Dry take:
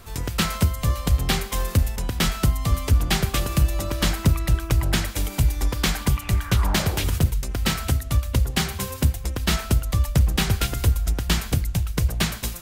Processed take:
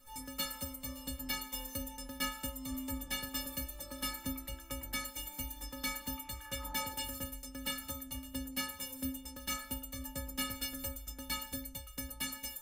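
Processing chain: high shelf 9200 Hz +9.5 dB; metallic resonator 260 Hz, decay 0.56 s, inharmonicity 0.03; gain +2 dB

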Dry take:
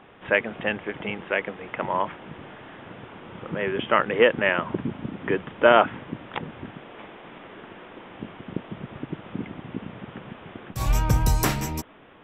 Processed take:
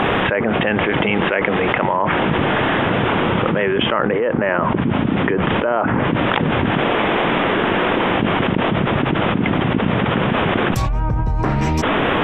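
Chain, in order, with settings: treble ducked by the level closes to 1400 Hz, closed at -19 dBFS; fast leveller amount 100%; gain -4.5 dB

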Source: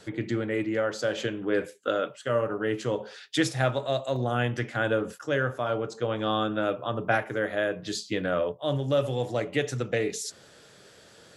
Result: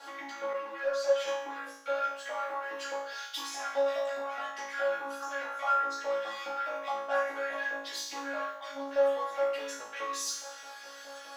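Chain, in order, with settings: graphic EQ 250/2000/8000 Hz +5/-5/-11 dB; in parallel at 0 dB: compressor, threshold -37 dBFS, peak gain reduction 18.5 dB; on the sum: limiter -21.5 dBFS, peak gain reduction 11 dB; sample leveller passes 2; LFO high-pass saw up 4.8 Hz 750–2000 Hz; resonator 280 Hz, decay 0.16 s, harmonics all, mix 100%; on a send: flutter echo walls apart 3.1 m, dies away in 0.65 s; 0.53–1.28 on the sum: ensemble effect; gain +3.5 dB

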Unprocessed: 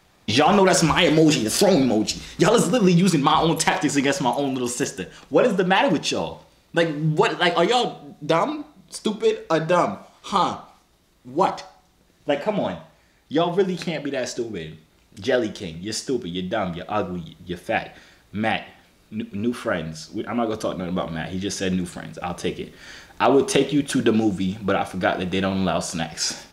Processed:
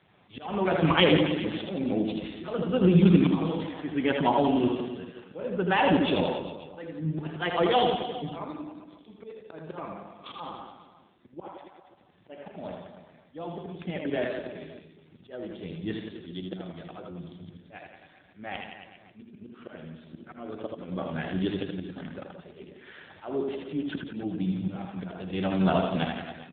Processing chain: auto swell 0.662 s; reverse bouncing-ball echo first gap 80 ms, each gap 1.15×, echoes 5; gain -1.5 dB; AMR-NB 7.4 kbps 8000 Hz

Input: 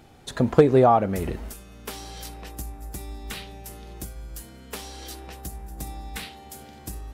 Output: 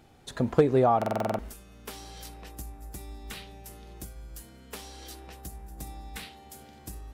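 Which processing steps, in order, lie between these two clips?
stuck buffer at 0.97, samples 2048, times 8; gain -5.5 dB

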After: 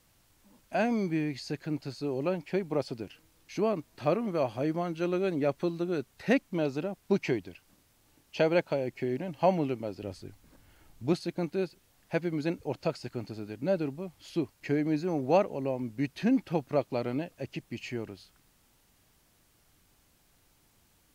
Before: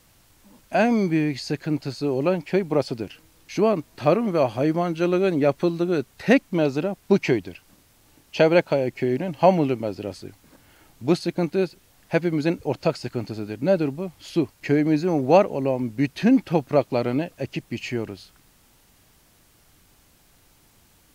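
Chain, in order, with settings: 10.02–11.13 low shelf 93 Hz +11.5 dB; gain -8.5 dB

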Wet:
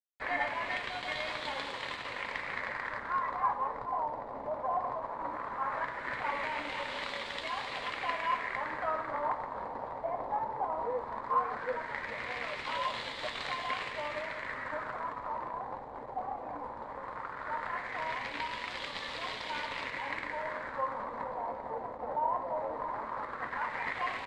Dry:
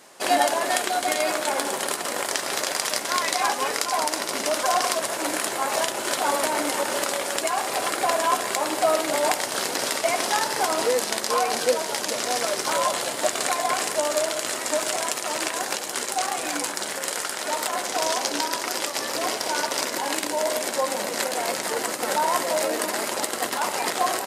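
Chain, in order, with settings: overdrive pedal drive 7 dB, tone 1000 Hz, clips at -4.5 dBFS; bit-crush 6-bit; passive tone stack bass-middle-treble 5-5-5; in parallel at -4 dB: sample-rate reducer 3900 Hz, jitter 0%; on the sum: de-hum 82.38 Hz, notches 33; LFO low-pass sine 0.17 Hz 770–3300 Hz; ripple EQ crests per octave 1, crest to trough 6 dB

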